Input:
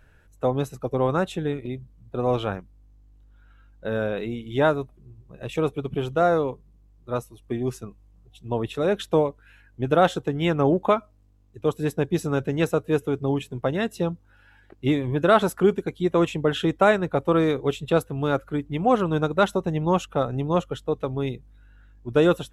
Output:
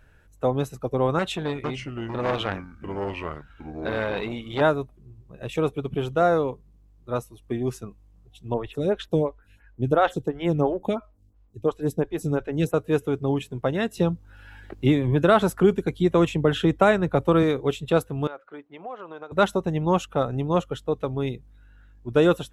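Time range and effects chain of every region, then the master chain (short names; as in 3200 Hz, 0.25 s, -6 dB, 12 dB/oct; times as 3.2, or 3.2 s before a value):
1.19–4.61 bell 2600 Hz +8 dB 2.8 oct + echoes that change speed 0.449 s, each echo -4 st, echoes 2, each echo -6 dB + core saturation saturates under 1100 Hz
8.54–12.74 low shelf 97 Hz +10 dB + photocell phaser 2.9 Hz
13.97–17.43 low shelf 130 Hz +8 dB + three-band squash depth 40%
18.27–19.32 HPF 620 Hz + compressor 3:1, threshold -33 dBFS + tape spacing loss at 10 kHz 29 dB
whole clip: dry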